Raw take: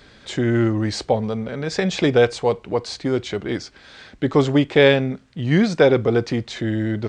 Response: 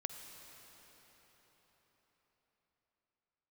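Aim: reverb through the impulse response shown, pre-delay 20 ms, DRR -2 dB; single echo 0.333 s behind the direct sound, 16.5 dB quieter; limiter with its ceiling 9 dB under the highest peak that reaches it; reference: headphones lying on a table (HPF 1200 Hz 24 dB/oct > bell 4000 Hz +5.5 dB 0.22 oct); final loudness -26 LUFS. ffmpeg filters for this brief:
-filter_complex "[0:a]alimiter=limit=-11dB:level=0:latency=1,aecho=1:1:333:0.15,asplit=2[a][b];[1:a]atrim=start_sample=2205,adelay=20[c];[b][c]afir=irnorm=-1:irlink=0,volume=3dB[d];[a][d]amix=inputs=2:normalize=0,highpass=f=1.2k:w=0.5412,highpass=f=1.2k:w=1.3066,equalizer=f=4k:t=o:w=0.22:g=5.5,volume=2dB"

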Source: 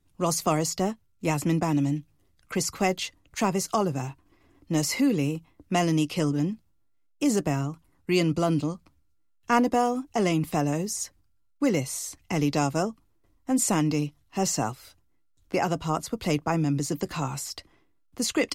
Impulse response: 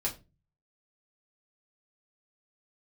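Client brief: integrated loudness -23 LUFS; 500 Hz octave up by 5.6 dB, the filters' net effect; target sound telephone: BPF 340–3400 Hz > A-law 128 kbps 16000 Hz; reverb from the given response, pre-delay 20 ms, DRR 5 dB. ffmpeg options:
-filter_complex "[0:a]equalizer=f=500:t=o:g=8.5,asplit=2[a][b];[1:a]atrim=start_sample=2205,adelay=20[c];[b][c]afir=irnorm=-1:irlink=0,volume=-9dB[d];[a][d]amix=inputs=2:normalize=0,highpass=340,lowpass=3.4k,volume=2dB" -ar 16000 -c:a pcm_alaw

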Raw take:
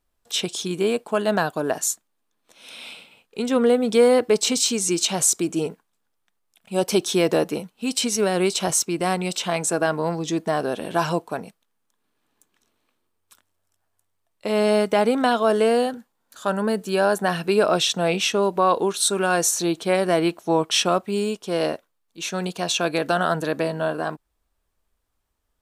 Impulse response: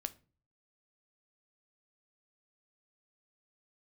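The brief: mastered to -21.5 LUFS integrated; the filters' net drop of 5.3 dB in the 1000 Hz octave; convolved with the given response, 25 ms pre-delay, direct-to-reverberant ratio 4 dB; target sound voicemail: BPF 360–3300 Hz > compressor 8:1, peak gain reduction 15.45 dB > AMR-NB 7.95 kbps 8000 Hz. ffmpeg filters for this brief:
-filter_complex "[0:a]equalizer=f=1k:t=o:g=-7.5,asplit=2[a][b];[1:a]atrim=start_sample=2205,adelay=25[c];[b][c]afir=irnorm=-1:irlink=0,volume=-2.5dB[d];[a][d]amix=inputs=2:normalize=0,highpass=360,lowpass=3.3k,acompressor=threshold=-27dB:ratio=8,volume=11.5dB" -ar 8000 -c:a libopencore_amrnb -b:a 7950

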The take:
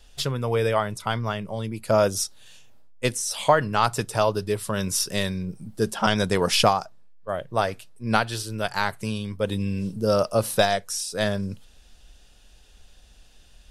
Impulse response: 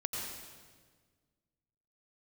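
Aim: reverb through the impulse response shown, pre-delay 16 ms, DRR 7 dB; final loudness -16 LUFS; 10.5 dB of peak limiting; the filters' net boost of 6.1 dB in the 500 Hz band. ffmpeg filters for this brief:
-filter_complex "[0:a]equalizer=f=500:t=o:g=7.5,alimiter=limit=-11.5dB:level=0:latency=1,asplit=2[a][b];[1:a]atrim=start_sample=2205,adelay=16[c];[b][c]afir=irnorm=-1:irlink=0,volume=-10dB[d];[a][d]amix=inputs=2:normalize=0,volume=7.5dB"

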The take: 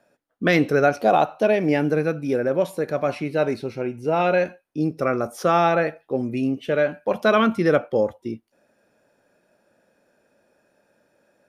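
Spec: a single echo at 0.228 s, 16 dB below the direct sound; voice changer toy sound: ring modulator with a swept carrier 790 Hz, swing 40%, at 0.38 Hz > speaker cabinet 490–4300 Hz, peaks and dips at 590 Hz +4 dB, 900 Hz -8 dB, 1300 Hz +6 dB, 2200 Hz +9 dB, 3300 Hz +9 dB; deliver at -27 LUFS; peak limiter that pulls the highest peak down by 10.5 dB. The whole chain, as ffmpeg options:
-af "alimiter=limit=-16dB:level=0:latency=1,aecho=1:1:228:0.158,aeval=exprs='val(0)*sin(2*PI*790*n/s+790*0.4/0.38*sin(2*PI*0.38*n/s))':c=same,highpass=490,equalizer=f=590:t=q:w=4:g=4,equalizer=f=900:t=q:w=4:g=-8,equalizer=f=1.3k:t=q:w=4:g=6,equalizer=f=2.2k:t=q:w=4:g=9,equalizer=f=3.3k:t=q:w=4:g=9,lowpass=f=4.3k:w=0.5412,lowpass=f=4.3k:w=1.3066"

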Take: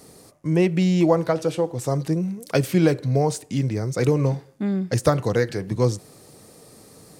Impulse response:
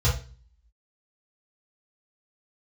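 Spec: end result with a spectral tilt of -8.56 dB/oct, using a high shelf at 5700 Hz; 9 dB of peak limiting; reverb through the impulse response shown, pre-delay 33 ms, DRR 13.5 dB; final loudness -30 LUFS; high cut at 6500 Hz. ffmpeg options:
-filter_complex "[0:a]lowpass=6.5k,highshelf=f=5.7k:g=6,alimiter=limit=-13dB:level=0:latency=1,asplit=2[a][b];[1:a]atrim=start_sample=2205,adelay=33[c];[b][c]afir=irnorm=-1:irlink=0,volume=-25.5dB[d];[a][d]amix=inputs=2:normalize=0,volume=-9dB"

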